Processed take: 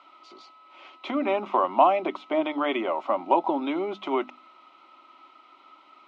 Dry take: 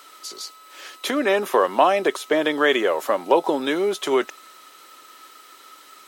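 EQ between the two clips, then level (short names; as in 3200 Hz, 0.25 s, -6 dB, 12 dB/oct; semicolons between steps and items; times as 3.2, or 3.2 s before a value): ladder low-pass 2600 Hz, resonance 40%; notches 50/100/150/200/250/300 Hz; fixed phaser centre 460 Hz, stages 6; +7.0 dB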